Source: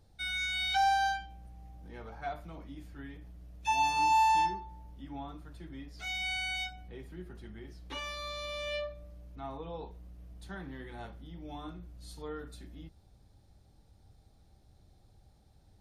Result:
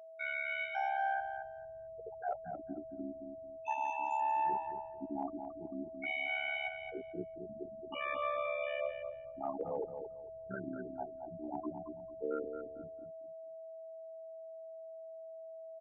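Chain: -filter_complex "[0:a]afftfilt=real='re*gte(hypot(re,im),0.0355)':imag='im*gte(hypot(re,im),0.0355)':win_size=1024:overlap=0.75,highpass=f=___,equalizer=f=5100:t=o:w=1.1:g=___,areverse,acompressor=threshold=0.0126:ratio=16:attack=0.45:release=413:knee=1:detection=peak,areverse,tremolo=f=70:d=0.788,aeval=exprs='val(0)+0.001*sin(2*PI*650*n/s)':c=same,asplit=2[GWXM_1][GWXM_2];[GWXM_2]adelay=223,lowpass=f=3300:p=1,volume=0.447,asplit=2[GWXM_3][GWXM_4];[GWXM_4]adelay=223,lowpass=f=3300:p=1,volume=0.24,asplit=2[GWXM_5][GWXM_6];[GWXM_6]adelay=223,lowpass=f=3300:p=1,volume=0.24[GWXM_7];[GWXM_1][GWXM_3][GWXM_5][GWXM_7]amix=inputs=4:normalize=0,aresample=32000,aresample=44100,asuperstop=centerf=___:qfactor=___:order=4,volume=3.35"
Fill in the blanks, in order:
260, -6, 4300, 1.1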